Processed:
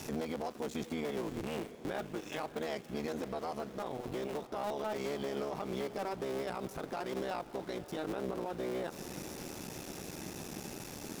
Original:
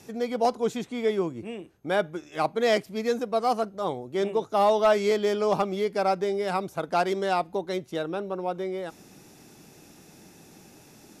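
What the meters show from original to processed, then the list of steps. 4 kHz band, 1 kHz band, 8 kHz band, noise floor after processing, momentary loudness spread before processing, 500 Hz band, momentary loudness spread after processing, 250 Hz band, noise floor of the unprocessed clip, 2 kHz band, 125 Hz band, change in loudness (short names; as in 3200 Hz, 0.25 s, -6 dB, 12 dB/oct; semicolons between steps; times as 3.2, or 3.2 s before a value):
-9.5 dB, -14.0 dB, -2.5 dB, -50 dBFS, 9 LU, -12.5 dB, 6 LU, -7.5 dB, -53 dBFS, -11.0 dB, -5.5 dB, -12.5 dB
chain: cycle switcher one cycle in 3, muted; compressor 5:1, threshold -39 dBFS, peak gain reduction 18.5 dB; sample gate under -59 dBFS; limiter -37 dBFS, peak gain reduction 11 dB; diffused feedback echo 0.611 s, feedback 58%, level -15 dB; gain +8.5 dB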